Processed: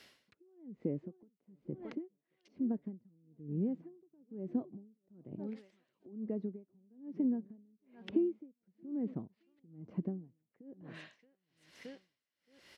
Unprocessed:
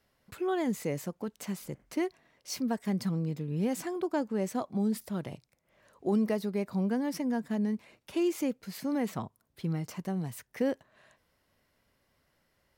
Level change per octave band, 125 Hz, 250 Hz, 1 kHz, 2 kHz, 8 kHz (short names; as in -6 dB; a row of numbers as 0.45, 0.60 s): -10.0 dB, -7.0 dB, -21.0 dB, under -15 dB, under -25 dB